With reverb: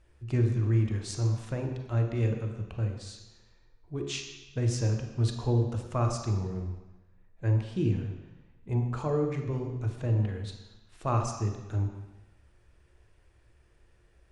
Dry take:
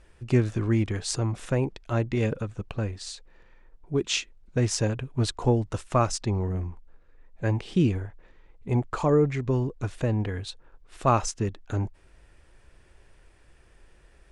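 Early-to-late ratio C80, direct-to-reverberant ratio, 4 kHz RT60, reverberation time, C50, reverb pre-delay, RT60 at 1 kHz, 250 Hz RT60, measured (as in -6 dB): 7.0 dB, 3.0 dB, 1.1 s, 1.0 s, 5.0 dB, 3 ms, 1.1 s, 1.0 s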